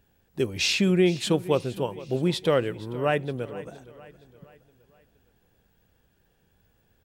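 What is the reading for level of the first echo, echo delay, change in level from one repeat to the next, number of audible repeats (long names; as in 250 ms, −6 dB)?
−18.0 dB, 467 ms, −6.5 dB, 3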